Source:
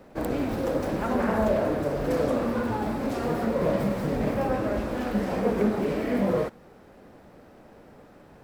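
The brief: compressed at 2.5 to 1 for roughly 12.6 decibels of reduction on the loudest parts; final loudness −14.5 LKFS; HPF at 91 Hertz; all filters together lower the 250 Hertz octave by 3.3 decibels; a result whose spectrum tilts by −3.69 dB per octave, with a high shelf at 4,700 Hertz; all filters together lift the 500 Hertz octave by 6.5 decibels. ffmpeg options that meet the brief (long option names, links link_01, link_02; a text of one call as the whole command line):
ffmpeg -i in.wav -af "highpass=91,equalizer=frequency=250:width_type=o:gain=-6.5,equalizer=frequency=500:width_type=o:gain=9,highshelf=frequency=4700:gain=-5,acompressor=threshold=-35dB:ratio=2.5,volume=19dB" out.wav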